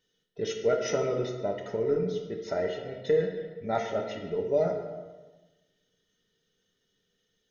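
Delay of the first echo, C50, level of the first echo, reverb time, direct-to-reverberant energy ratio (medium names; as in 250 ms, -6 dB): no echo, 5.5 dB, no echo, 1.2 s, 1.5 dB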